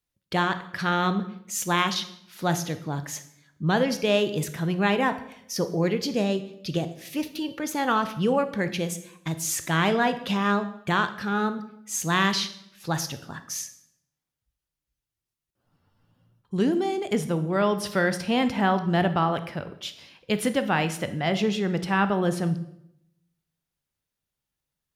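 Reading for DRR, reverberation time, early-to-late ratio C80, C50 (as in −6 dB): 10.0 dB, 0.80 s, 15.5 dB, 13.0 dB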